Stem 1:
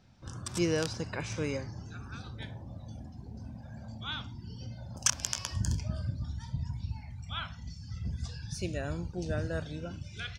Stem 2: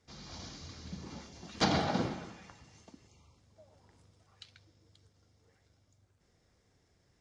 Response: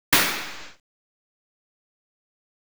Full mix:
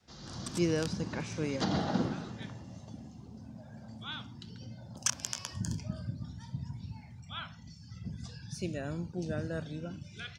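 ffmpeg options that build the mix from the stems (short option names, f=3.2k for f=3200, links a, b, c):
-filter_complex "[0:a]highpass=120,volume=-3.5dB[a];[1:a]bandreject=f=2.3k:w=5.8,alimiter=limit=-22.5dB:level=0:latency=1:release=352,volume=0dB[b];[a][b]amix=inputs=2:normalize=0,adynamicequalizer=threshold=0.00282:dfrequency=200:dqfactor=0.8:tfrequency=200:tqfactor=0.8:attack=5:release=100:ratio=0.375:range=3:mode=boostabove:tftype=bell"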